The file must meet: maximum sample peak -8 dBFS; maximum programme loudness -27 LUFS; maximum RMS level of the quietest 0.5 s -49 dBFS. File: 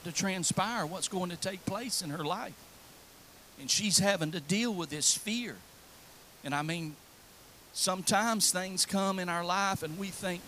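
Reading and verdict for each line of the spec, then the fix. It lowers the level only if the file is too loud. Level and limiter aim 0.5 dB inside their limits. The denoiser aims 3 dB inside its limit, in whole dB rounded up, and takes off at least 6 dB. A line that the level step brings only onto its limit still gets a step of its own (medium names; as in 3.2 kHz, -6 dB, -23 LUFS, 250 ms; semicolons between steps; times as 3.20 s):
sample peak -11.5 dBFS: pass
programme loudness -30.5 LUFS: pass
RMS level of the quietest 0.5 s -56 dBFS: pass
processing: none needed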